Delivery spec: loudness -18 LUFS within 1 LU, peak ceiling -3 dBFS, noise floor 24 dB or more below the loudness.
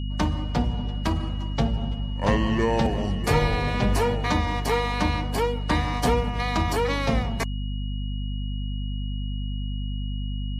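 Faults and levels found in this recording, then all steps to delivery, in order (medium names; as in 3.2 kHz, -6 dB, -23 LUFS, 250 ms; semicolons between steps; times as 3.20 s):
hum 50 Hz; highest harmonic 250 Hz; hum level -26 dBFS; steady tone 2.9 kHz; tone level -43 dBFS; loudness -26.0 LUFS; peak level -8.5 dBFS; loudness target -18.0 LUFS
-> hum notches 50/100/150/200/250 Hz; band-stop 2.9 kHz, Q 30; trim +8 dB; peak limiter -3 dBFS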